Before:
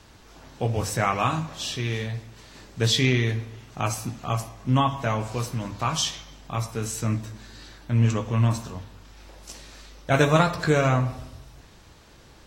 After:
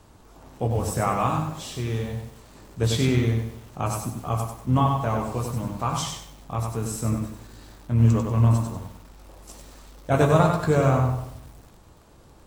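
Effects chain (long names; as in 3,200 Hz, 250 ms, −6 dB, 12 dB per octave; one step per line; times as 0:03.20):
flat-topped bell 3,100 Hz −8.5 dB 2.3 octaves
pitch-shifted copies added −7 semitones −14 dB
feedback echo at a low word length 96 ms, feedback 35%, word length 8 bits, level −4.5 dB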